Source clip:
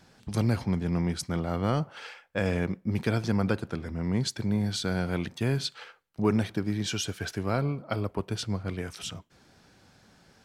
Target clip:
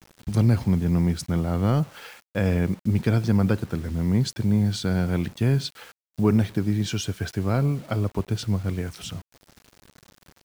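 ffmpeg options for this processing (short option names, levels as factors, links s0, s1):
-af "lowshelf=f=270:g=9,acrusher=bits=7:mix=0:aa=0.000001"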